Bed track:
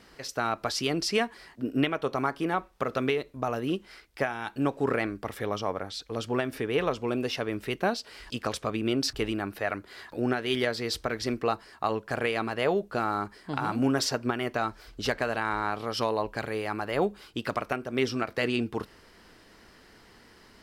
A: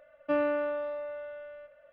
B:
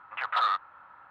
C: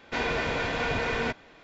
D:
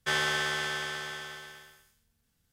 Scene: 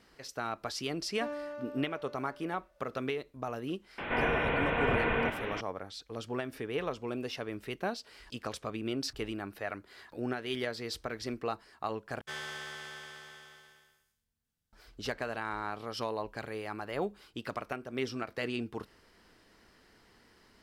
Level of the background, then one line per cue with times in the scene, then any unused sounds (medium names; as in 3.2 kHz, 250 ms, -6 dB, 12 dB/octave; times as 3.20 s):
bed track -7.5 dB
0.92 s: add A -11 dB + median filter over 15 samples
3.98 s: add C -1 dB + one-bit delta coder 16 kbps, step -31 dBFS
12.21 s: replace with D -12.5 dB
not used: B